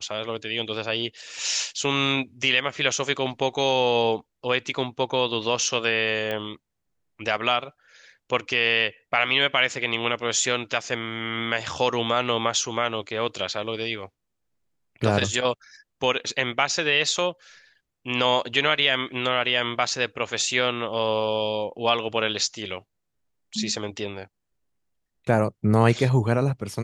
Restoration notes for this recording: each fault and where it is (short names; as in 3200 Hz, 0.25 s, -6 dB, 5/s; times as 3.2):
6.31 pop -16 dBFS